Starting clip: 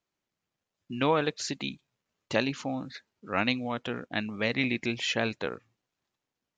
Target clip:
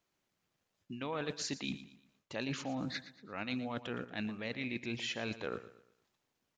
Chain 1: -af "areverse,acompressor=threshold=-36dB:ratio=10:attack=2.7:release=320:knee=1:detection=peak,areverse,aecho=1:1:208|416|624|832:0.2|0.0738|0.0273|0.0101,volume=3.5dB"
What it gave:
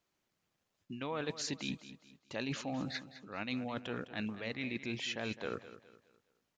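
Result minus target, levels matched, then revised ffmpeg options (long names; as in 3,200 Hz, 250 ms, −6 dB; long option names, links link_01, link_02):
echo 92 ms late
-af "areverse,acompressor=threshold=-36dB:ratio=10:attack=2.7:release=320:knee=1:detection=peak,areverse,aecho=1:1:116|232|348|464:0.2|0.0738|0.0273|0.0101,volume=3.5dB"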